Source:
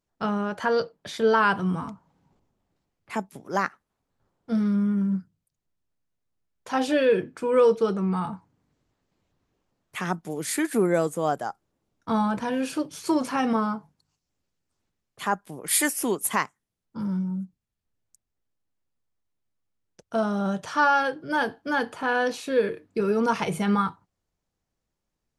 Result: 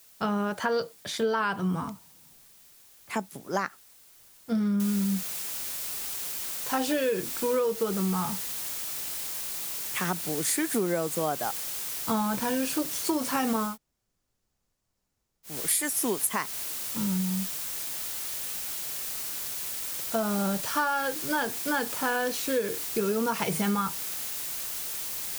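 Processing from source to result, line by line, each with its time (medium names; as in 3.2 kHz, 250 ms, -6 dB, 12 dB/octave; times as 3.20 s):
4.80 s: noise floor step -61 dB -40 dB
13.70–15.51 s: room tone, crossfade 0.16 s
whole clip: treble shelf 4.7 kHz +7 dB; compression 10:1, threshold -23 dBFS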